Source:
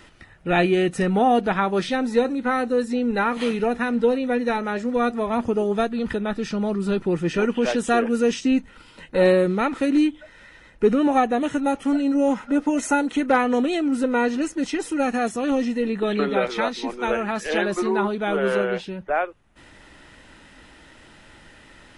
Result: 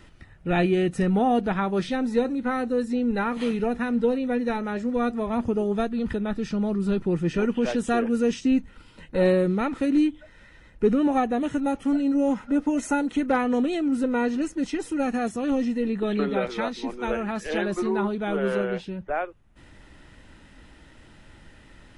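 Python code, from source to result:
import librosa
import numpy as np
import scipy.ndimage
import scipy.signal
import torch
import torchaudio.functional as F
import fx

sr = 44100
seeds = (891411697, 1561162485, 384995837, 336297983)

y = fx.low_shelf(x, sr, hz=240.0, db=10.0)
y = F.gain(torch.from_numpy(y), -6.0).numpy()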